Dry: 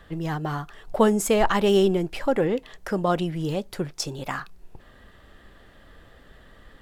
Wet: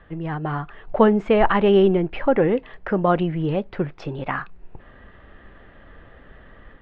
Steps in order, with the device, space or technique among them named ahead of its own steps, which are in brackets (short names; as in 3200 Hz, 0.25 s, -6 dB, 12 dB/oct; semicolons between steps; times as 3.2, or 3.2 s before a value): action camera in a waterproof case (LPF 2700 Hz 24 dB/oct; AGC gain up to 4.5 dB; AAC 96 kbps 24000 Hz)